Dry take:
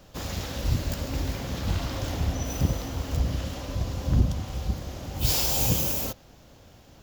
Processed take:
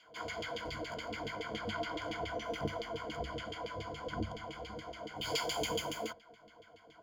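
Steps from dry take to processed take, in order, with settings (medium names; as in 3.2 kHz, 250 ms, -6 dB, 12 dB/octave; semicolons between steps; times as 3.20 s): LFO band-pass saw down 7.1 Hz 380–3100 Hz; rippled EQ curve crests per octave 1.8, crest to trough 17 dB; trim +1.5 dB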